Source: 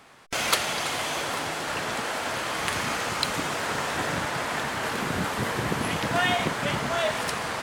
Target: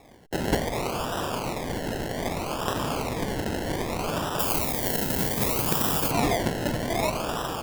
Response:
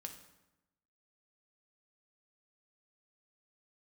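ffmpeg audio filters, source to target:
-filter_complex "[0:a]acrusher=samples=29:mix=1:aa=0.000001:lfo=1:lforange=17.4:lforate=0.64,asettb=1/sr,asplit=3[a][b][c];[a]atrim=end=4.394[d];[b]atrim=start=4.39:end=6.11,asetpts=PTS-STARTPTS,afade=t=in:d=0.004:c=qsin,afade=t=out:st=1.716:d=0.004:c=qsin,aemphasis=mode=production:type=50fm[e];[c]atrim=start=6.106[f];[d][e]acrossfade=d=0.004:c1=hsin:c2=qsin[g];[g][f]acrossfade=d=0.004:c1=qsin:c2=hsin"

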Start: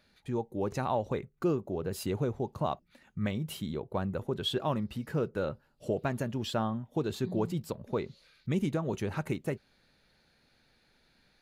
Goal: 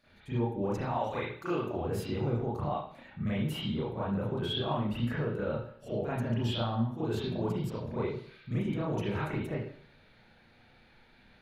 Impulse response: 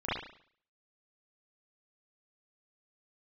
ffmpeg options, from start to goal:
-filter_complex "[0:a]asettb=1/sr,asplit=3[a][b][c];[a]atrim=end=0.934[d];[b]atrim=start=0.93:end=1.77,asetpts=PTS-STARTPTS,afade=t=in:d=0.004:c=qsin,afade=t=out:st=0.836:d=0.004:c=qsin,tiltshelf=f=730:g=-9[e];[c]atrim=start=1.766[f];[d][e]acrossfade=d=0.004:c1=hsin:c2=qsin[g];[g][f]acrossfade=d=0.004:c1=qsin:c2=hsin,alimiter=level_in=7dB:limit=-24dB:level=0:latency=1:release=80,volume=-7dB[h];[1:a]atrim=start_sample=2205[i];[h][i]afir=irnorm=-1:irlink=0"

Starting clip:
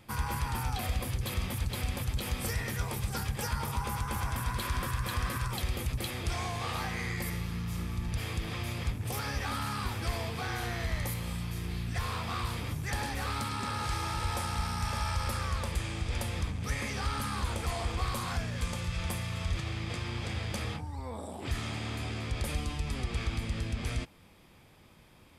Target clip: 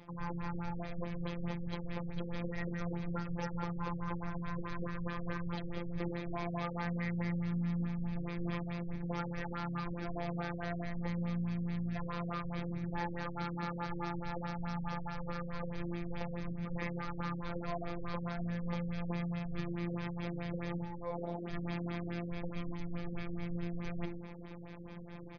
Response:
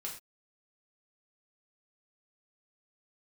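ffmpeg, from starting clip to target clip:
-filter_complex "[0:a]highshelf=f=2.4k:g=-12,bandreject=f=50:t=h:w=6,bandreject=f=100:t=h:w=6,bandreject=f=150:t=h:w=6,bandreject=f=200:t=h:w=6,bandreject=f=250:t=h:w=6,bandreject=f=300:t=h:w=6,bandreject=f=350:t=h:w=6,areverse,acompressor=threshold=-46dB:ratio=5,areverse,afftfilt=real='hypot(re,im)*cos(PI*b)':imag='0':win_size=1024:overlap=0.75,asplit=2[a][b];[b]adelay=122.4,volume=-11dB,highshelf=f=4k:g=-2.76[c];[a][c]amix=inputs=2:normalize=0,afftfilt=real='re*lt(b*sr/1024,510*pow(6700/510,0.5+0.5*sin(2*PI*4.7*pts/sr)))':imag='im*lt(b*sr/1024,510*pow(6700/510,0.5+0.5*sin(2*PI*4.7*pts/sr)))':win_size=1024:overlap=0.75,volume=15dB"

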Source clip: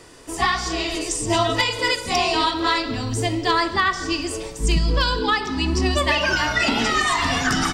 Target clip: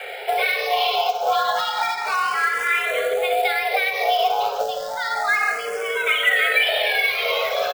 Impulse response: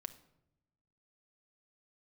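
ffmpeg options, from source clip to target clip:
-filter_complex "[0:a]alimiter=limit=-17.5dB:level=0:latency=1:release=77,afreqshift=390,asplit=2[a][b];[b]adelay=61,lowpass=f=2.9k:p=1,volume=-9dB,asplit=2[c][d];[d]adelay=61,lowpass=f=2.9k:p=1,volume=0.3,asplit=2[e][f];[f]adelay=61,lowpass=f=2.9k:p=1,volume=0.3[g];[a][c][e][g]amix=inputs=4:normalize=0,acompressor=threshold=-31dB:ratio=12,highpass=f=190:w=0.5412,highpass=f=190:w=1.3066,equalizer=f=200:t=q:w=4:g=-7,equalizer=f=300:t=q:w=4:g=-10,equalizer=f=1k:t=q:w=4:g=-5,equalizer=f=2.1k:t=q:w=4:g=4,lowpass=f=4k:w=0.5412,lowpass=f=4k:w=1.3066,bandreject=f=50:t=h:w=6,bandreject=f=100:t=h:w=6,bandreject=f=150:t=h:w=6,bandreject=f=200:t=h:w=6,bandreject=f=250:t=h:w=6,bandreject=f=300:t=h:w=6,bandreject=f=350:t=h:w=6,bandreject=f=400:t=h:w=6,asplit=2[h][i];[1:a]atrim=start_sample=2205,lowpass=6.1k[j];[i][j]afir=irnorm=-1:irlink=0,volume=11dB[k];[h][k]amix=inputs=2:normalize=0,acrusher=bits=4:mode=log:mix=0:aa=0.000001,asplit=2[l][m];[m]afreqshift=0.31[n];[l][n]amix=inputs=2:normalize=1,volume=6.5dB"

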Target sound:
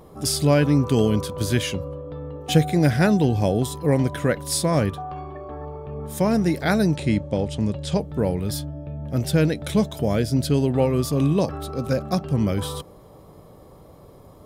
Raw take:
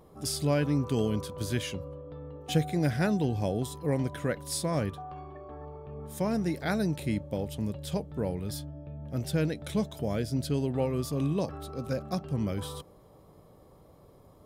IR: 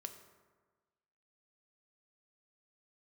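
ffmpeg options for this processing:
-filter_complex "[0:a]asettb=1/sr,asplit=3[a][b][c];[a]atrim=end=6.954[d];[b]atrim=start=6.95:end=8,asetpts=PTS-STARTPTS,afade=t=in:d=0.004:c=qsin,afade=t=out:st=1.046:d=0.004:c=qsin,lowpass=f=8.4k:w=0.5412,lowpass=f=8.4k:w=1.3066[e];[c]atrim=start=7.996[f];[d][e]acrossfade=d=0.004:c1=hsin:c2=qsin[g];[g][f]acrossfade=d=0.004:c1=qsin:c2=hsin,volume=9dB"

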